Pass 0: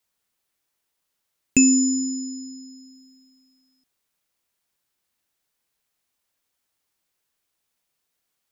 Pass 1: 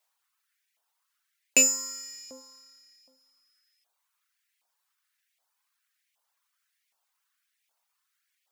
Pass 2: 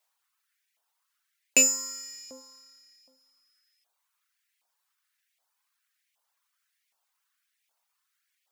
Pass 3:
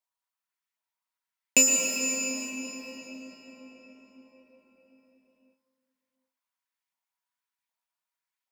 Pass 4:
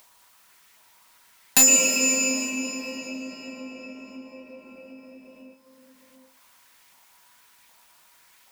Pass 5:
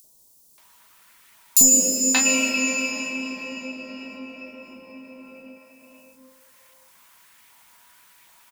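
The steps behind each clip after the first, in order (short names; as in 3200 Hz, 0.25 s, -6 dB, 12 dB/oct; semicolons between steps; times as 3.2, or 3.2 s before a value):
half-wave gain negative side -12 dB; LFO high-pass saw up 1.3 Hz 680–2200 Hz; reverb removal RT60 0.76 s; gain +3.5 dB
nothing audible
gate -51 dBFS, range -14 dB; small resonant body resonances 210/970 Hz, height 11 dB, ringing for 75 ms; reverb RT60 5.7 s, pre-delay 0.104 s, DRR -0.5 dB
in parallel at +2 dB: upward compressor, threshold -35 dBFS; on the sum: wavefolder -7.5 dBFS
notch 760 Hz, Q 19; three bands offset in time highs, lows, mids 40/580 ms, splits 560/5000 Hz; gain +3.5 dB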